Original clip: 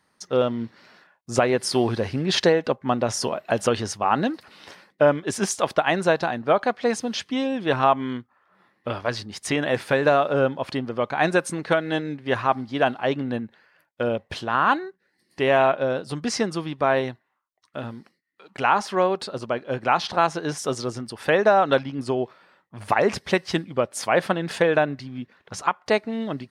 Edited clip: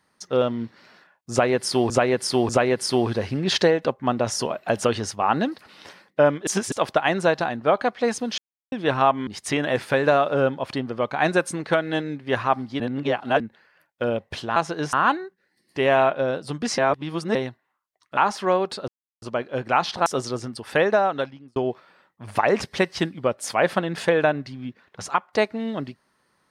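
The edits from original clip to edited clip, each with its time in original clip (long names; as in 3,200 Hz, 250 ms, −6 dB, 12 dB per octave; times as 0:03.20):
0:01.31–0:01.90: repeat, 3 plays
0:05.29–0:05.54: reverse
0:07.20–0:07.54: silence
0:08.09–0:09.26: remove
0:12.79–0:13.39: reverse
0:16.40–0:16.97: reverse
0:17.79–0:18.67: remove
0:19.38: splice in silence 0.34 s
0:20.22–0:20.59: move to 0:14.55
0:21.33–0:22.09: fade out linear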